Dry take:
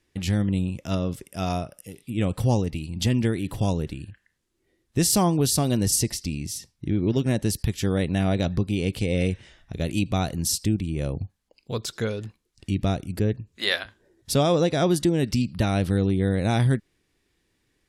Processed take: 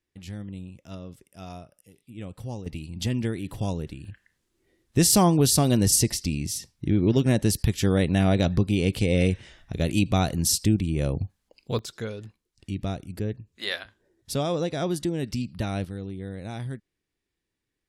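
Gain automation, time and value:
-13.5 dB
from 2.66 s -4.5 dB
from 4.05 s +2 dB
from 11.79 s -6 dB
from 15.85 s -13 dB

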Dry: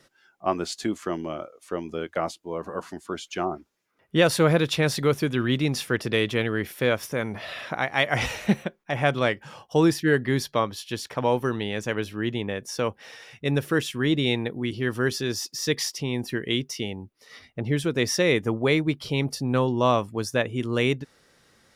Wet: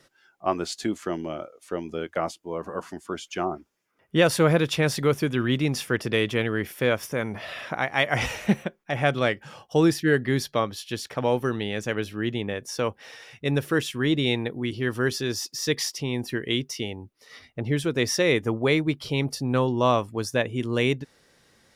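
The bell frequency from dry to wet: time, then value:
bell -5.5 dB 0.21 oct
210 Hz
from 0.75 s 1100 Hz
from 2.06 s 4000 Hz
from 8.82 s 980 Hz
from 12.53 s 190 Hz
from 20.25 s 1300 Hz

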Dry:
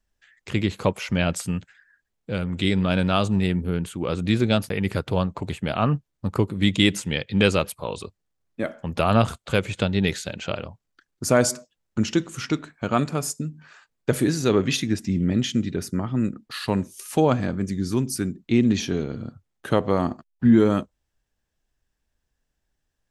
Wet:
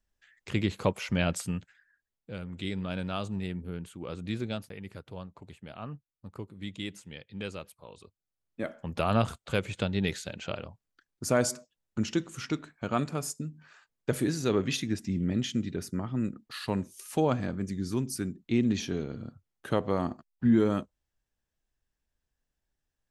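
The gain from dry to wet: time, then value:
1.37 s -5 dB
2.36 s -12.5 dB
4.4 s -12.5 dB
4.89 s -19 dB
7.94 s -19 dB
8.62 s -7 dB

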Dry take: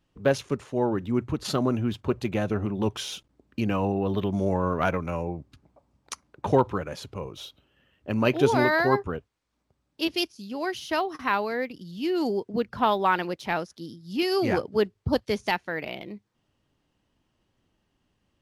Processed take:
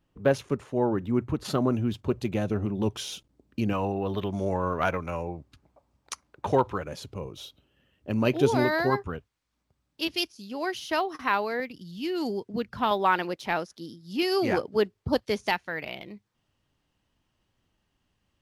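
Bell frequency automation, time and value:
bell -5 dB 2.3 oct
5200 Hz
from 1.73 s 1400 Hz
from 3.73 s 190 Hz
from 6.84 s 1400 Hz
from 8.9 s 450 Hz
from 10.28 s 110 Hz
from 11.6 s 540 Hz
from 12.91 s 86 Hz
from 15.53 s 330 Hz

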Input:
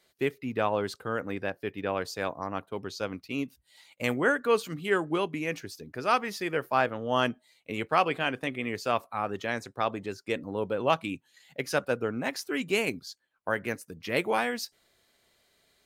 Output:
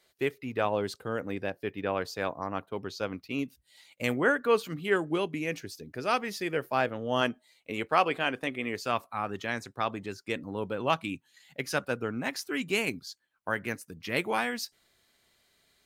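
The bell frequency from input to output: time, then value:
bell -4.5 dB 1.1 oct
200 Hz
from 0.65 s 1300 Hz
from 1.64 s 8500 Hz
from 3.39 s 980 Hz
from 4.12 s 7600 Hz
from 4.96 s 1100 Hz
from 7.21 s 130 Hz
from 8.81 s 530 Hz

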